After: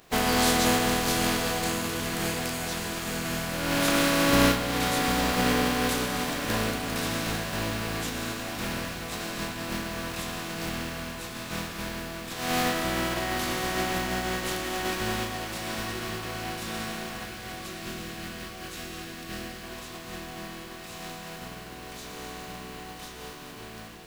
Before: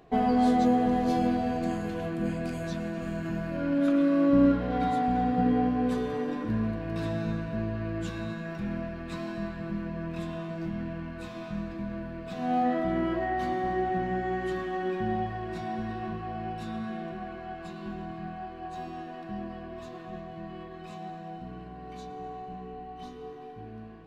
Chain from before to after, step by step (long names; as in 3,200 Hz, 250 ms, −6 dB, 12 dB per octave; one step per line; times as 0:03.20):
compressing power law on the bin magnitudes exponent 0.4
0:17.25–0:19.64: parametric band 890 Hz −12 dB 0.57 octaves
feedback delay with all-pass diffusion 963 ms, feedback 68%, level −11.5 dB